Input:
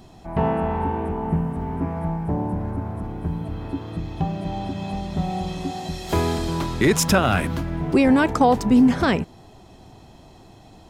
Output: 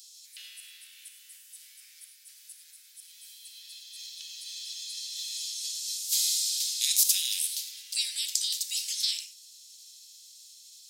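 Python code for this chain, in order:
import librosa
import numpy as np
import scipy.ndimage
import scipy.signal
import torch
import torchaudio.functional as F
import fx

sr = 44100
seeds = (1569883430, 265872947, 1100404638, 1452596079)

y = fx.spec_clip(x, sr, under_db=27)
y = scipy.signal.sosfilt(scipy.signal.cheby2(4, 70, 1000.0, 'highpass', fs=sr, output='sos'), y)
y = fx.rev_gated(y, sr, seeds[0], gate_ms=130, shape='flat', drr_db=7.0)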